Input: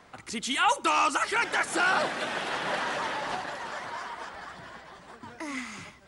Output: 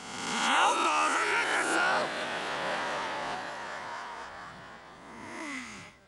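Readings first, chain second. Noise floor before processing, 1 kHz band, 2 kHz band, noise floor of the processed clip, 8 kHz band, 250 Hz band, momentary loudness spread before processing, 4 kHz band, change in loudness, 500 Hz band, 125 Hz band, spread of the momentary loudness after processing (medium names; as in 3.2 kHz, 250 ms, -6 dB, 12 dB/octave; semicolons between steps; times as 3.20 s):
-53 dBFS, -1.0 dB, -1.0 dB, -50 dBFS, -0.5 dB, -2.0 dB, 19 LU, -1.0 dB, -1.0 dB, -1.0 dB, -2.0 dB, 20 LU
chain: reverse spectral sustain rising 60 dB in 1.37 s; trim -5.5 dB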